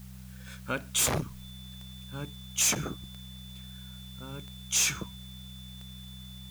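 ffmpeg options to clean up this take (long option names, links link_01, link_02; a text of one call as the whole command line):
ffmpeg -i in.wav -af "adeclick=threshold=4,bandreject=frequency=63.5:width_type=h:width=4,bandreject=frequency=127:width_type=h:width=4,bandreject=frequency=190.5:width_type=h:width=4,bandreject=frequency=3500:width=30,afftdn=noise_reduction=30:noise_floor=-45" out.wav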